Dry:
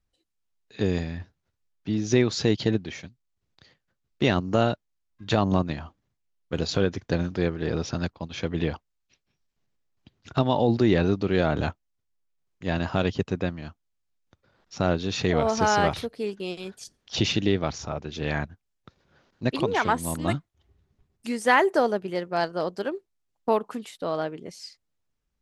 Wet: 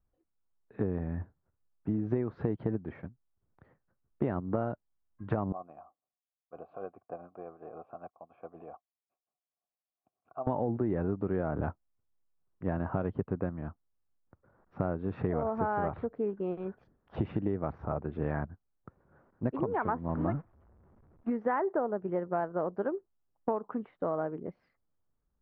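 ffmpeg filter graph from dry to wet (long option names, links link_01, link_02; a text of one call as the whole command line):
ffmpeg -i in.wav -filter_complex "[0:a]asettb=1/sr,asplit=3[link_01][link_02][link_03];[link_01]atrim=end=5.524[link_04];[link_02]atrim=start=5.52:end=10.47,asetpts=PTS-STARTPTS,afade=type=in:duration=0.004:curve=qsin,afade=type=out:start_time=4.946:duration=0.004:curve=qsin,tremolo=f=7.5:d=0.4,asplit=3[link_05][link_06][link_07];[link_05]bandpass=frequency=730:width_type=q:width=8,volume=0dB[link_08];[link_06]bandpass=frequency=1090:width_type=q:width=8,volume=-6dB[link_09];[link_07]bandpass=frequency=2440:width_type=q:width=8,volume=-9dB[link_10];[link_08][link_09][link_10]amix=inputs=3:normalize=0[link_11];[link_03]atrim=start=10.466[link_12];[link_04][link_11]acrossfade=duration=0.004:curve1=hsin:curve2=qsin[link_13];[link_13][link_12]acrossfade=duration=0.004:curve1=qsin:curve2=hsin,asettb=1/sr,asplit=3[link_14][link_15][link_16];[link_14]atrim=end=20.084[link_17];[link_15]atrim=start=20.08:end=21.3,asetpts=PTS-STARTPTS,afade=type=in:duration=0.004:curve=qsin,afade=type=out:start_time=1.216:duration=0.004:curve=qsin,aeval=exprs='val(0)+0.5*0.0237*sgn(val(0))':channel_layout=same,agate=range=-23dB:threshold=-33dB:ratio=16:release=100:detection=peak[link_18];[link_16]atrim=start=21.296[link_19];[link_17][link_18]acrossfade=duration=0.004:curve1=hsin:curve2=qsin[link_20];[link_20][link_19]acrossfade=duration=0.004:curve1=qsin:curve2=hsin,lowpass=frequency=1400:width=0.5412,lowpass=frequency=1400:width=1.3066,acompressor=threshold=-27dB:ratio=6" out.wav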